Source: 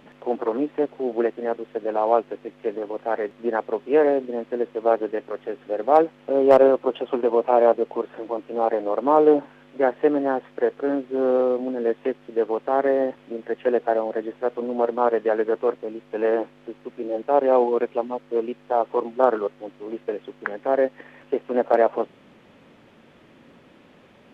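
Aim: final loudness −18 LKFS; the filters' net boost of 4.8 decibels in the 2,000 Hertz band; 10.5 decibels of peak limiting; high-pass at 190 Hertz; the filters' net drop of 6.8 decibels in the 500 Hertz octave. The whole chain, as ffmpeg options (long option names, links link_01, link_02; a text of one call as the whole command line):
ffmpeg -i in.wav -af "highpass=190,equalizer=frequency=500:width_type=o:gain=-8.5,equalizer=frequency=2000:width_type=o:gain=7,volume=11.5dB,alimiter=limit=-2.5dB:level=0:latency=1" out.wav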